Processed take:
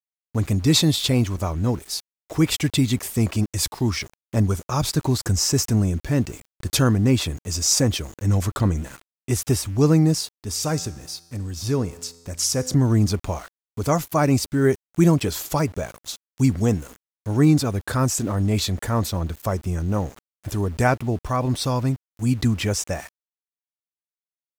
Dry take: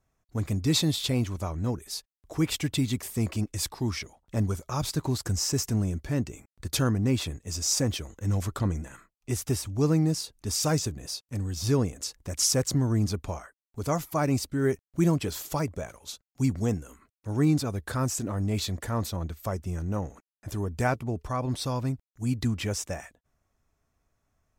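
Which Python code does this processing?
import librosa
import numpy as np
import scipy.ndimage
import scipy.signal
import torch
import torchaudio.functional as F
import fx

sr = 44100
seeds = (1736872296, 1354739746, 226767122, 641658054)

y = np.where(np.abs(x) >= 10.0 ** (-46.5 / 20.0), x, 0.0)
y = fx.comb_fb(y, sr, f0_hz=85.0, decay_s=1.3, harmonics='all', damping=0.0, mix_pct=50, at=(10.31, 12.74))
y = y * librosa.db_to_amplitude(7.0)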